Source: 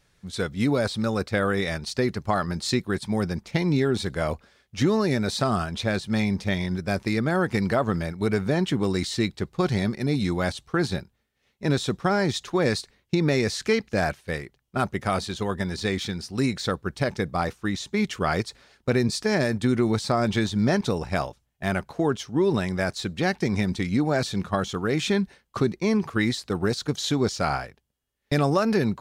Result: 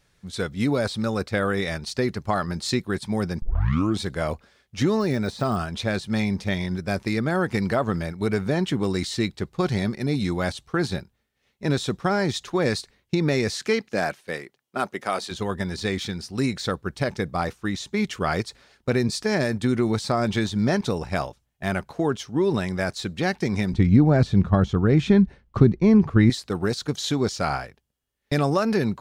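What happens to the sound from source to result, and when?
3.42 tape start 0.57 s
4.94–5.64 de-esser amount 90%
13.51–15.3 HPF 150 Hz -> 340 Hz
23.73–26.3 RIAA curve playback

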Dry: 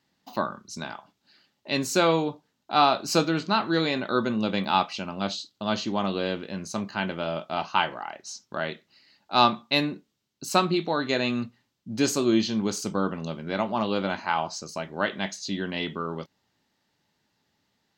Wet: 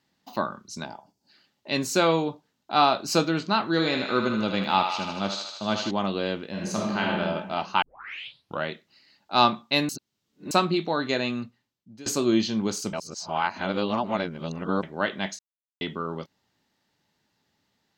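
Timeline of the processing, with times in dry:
0.85–1.3 spectral gain 1000–4300 Hz -12 dB
3.71–5.91 thinning echo 77 ms, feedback 73%, high-pass 530 Hz, level -5.5 dB
6.5–7.12 reverb throw, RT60 1.3 s, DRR -3 dB
7.82 tape start 0.83 s
9.89–10.51 reverse
11.08–12.06 fade out, to -23.5 dB
12.93–14.83 reverse
15.39–15.81 mute

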